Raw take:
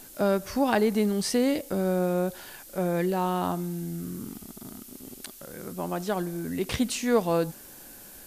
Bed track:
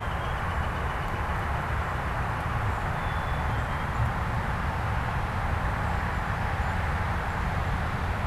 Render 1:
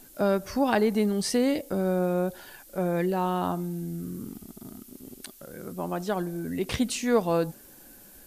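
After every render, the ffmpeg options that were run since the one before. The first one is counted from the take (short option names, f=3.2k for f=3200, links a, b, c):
-af "afftdn=nr=6:nf=-47"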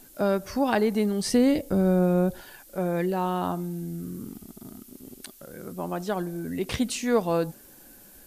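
-filter_complex "[0:a]asettb=1/sr,asplit=3[a][b][c];[a]atrim=end=1.264[d];[b]atrim=start=1.26:end=2.41,asetpts=PTS-STARTPTS,afade=t=in:d=0.004:c=qsin,afade=t=out:st=1.146:d=0.004:c=qsin,lowshelf=f=210:g=11.5[e];[c]atrim=start=2.406[f];[d][e]acrossfade=d=0.004:c1=hsin:c2=qsin[g];[g][f]acrossfade=d=0.004:c1=qsin:c2=hsin"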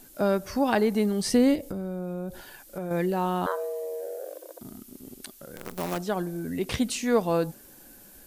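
-filter_complex "[0:a]asettb=1/sr,asplit=3[a][b][c];[a]atrim=end=1.554[d];[b]atrim=start=1.55:end=2.91,asetpts=PTS-STARTPTS,afade=t=in:d=0.004:c=qsin,afade=t=out:st=1.356:d=0.004:c=qsin,acompressor=threshold=-29dB:ratio=6:attack=3.2:release=140:knee=1:detection=peak[e];[c]atrim=start=2.906[f];[d][e]acrossfade=d=0.004:c1=hsin:c2=qsin[g];[g][f]acrossfade=d=0.004:c1=qsin:c2=hsin,asettb=1/sr,asplit=3[h][i][j];[h]atrim=end=3.464[k];[i]atrim=start=3.46:end=4.61,asetpts=PTS-STARTPTS,afade=t=in:d=0.004:c=qsin,afade=t=out:st=1.146:d=0.004:c=qsin,afreqshift=300[l];[j]atrim=start=4.606[m];[k][l]acrossfade=d=0.004:c1=hsin:c2=qsin[n];[n][m]acrossfade=d=0.004:c1=qsin:c2=hsin,asettb=1/sr,asplit=3[o][p][q];[o]atrim=end=5.564[r];[p]atrim=start=5.56:end=5.98,asetpts=PTS-STARTPTS,afade=t=in:d=0.004:c=qsin,afade=t=out:st=0.416:d=0.004:c=qsin,acrusher=bits=6:dc=4:mix=0:aa=0.000001[s];[q]atrim=start=5.976[t];[r][s]acrossfade=d=0.004:c1=hsin:c2=qsin[u];[u][t]acrossfade=d=0.004:c1=qsin:c2=hsin"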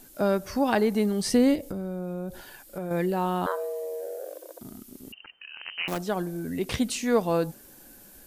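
-filter_complex "[0:a]asettb=1/sr,asplit=3[a][b][c];[a]atrim=end=2.624[d];[b]atrim=start=2.62:end=3.69,asetpts=PTS-STARTPTS,afade=t=in:d=0.004:c=qsin,afade=t=out:st=1.066:d=0.004:c=qsin,bandreject=f=6.1k:w=12[e];[c]atrim=start=3.686[f];[d][e]acrossfade=d=0.004:c1=hsin:c2=qsin[g];[g][f]acrossfade=d=0.004:c1=qsin:c2=hsin,asettb=1/sr,asplit=3[h][i][j];[h]atrim=end=5.124[k];[i]atrim=start=5.12:end=5.88,asetpts=PTS-STARTPTS,afade=t=in:d=0.004:c=qsin,afade=t=out:st=0.756:d=0.004:c=qsin,lowpass=f=2.6k:t=q:w=0.5098,lowpass=f=2.6k:t=q:w=0.6013,lowpass=f=2.6k:t=q:w=0.9,lowpass=f=2.6k:t=q:w=2.563,afreqshift=-3100[l];[j]atrim=start=5.876[m];[k][l]acrossfade=d=0.004:c1=hsin:c2=qsin[n];[n][m]acrossfade=d=0.004:c1=qsin:c2=hsin"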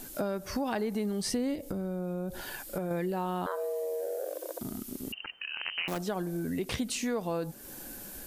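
-filter_complex "[0:a]asplit=2[a][b];[b]alimiter=limit=-20.5dB:level=0:latency=1,volume=1dB[c];[a][c]amix=inputs=2:normalize=0,acompressor=threshold=-33dB:ratio=3"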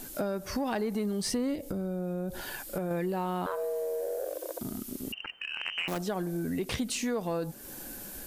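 -af "aeval=exprs='0.106*(cos(1*acos(clip(val(0)/0.106,-1,1)))-cos(1*PI/2))+0.00376*(cos(5*acos(clip(val(0)/0.106,-1,1)))-cos(5*PI/2))+0.00075*(cos(8*acos(clip(val(0)/0.106,-1,1)))-cos(8*PI/2))':c=same"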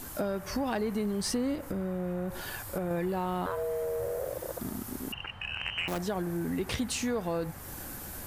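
-filter_complex "[1:a]volume=-19.5dB[a];[0:a][a]amix=inputs=2:normalize=0"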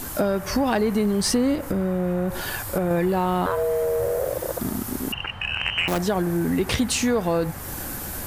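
-af "volume=9.5dB"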